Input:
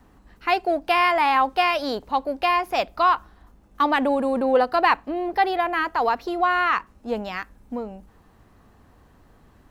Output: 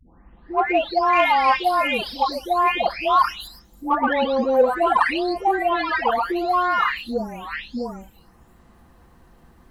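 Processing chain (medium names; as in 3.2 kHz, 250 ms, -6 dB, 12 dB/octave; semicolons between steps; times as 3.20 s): delay that grows with frequency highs late, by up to 762 ms; in parallel at -5 dB: saturation -16 dBFS, distortion -16 dB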